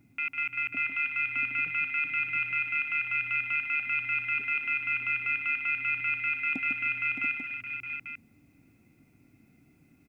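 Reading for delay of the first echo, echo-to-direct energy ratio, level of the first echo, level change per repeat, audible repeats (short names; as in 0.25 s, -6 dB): 0.15 s, -2.0 dB, -7.5 dB, no steady repeat, 5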